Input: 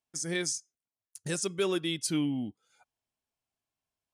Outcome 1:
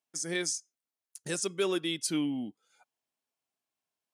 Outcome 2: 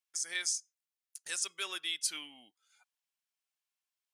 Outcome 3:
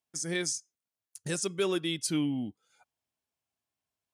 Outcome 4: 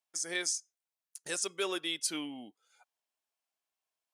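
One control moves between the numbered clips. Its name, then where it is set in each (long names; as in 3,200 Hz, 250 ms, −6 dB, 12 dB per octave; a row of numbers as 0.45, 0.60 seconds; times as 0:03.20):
high-pass filter, corner frequency: 200, 1,400, 56, 530 Hertz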